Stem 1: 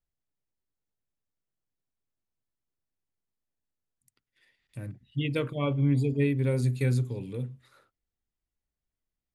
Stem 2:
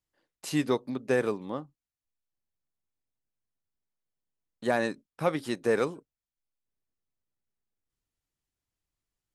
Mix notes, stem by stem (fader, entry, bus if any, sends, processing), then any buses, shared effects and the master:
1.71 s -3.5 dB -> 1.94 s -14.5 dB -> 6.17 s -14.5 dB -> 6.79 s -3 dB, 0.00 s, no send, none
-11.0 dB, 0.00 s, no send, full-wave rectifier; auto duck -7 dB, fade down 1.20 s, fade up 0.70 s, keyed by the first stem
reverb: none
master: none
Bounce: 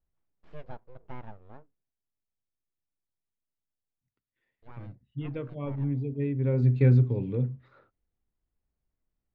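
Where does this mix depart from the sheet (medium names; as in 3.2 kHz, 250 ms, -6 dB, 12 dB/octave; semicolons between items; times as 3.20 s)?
stem 1 -3.5 dB -> +6.5 dB; master: extra tape spacing loss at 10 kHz 44 dB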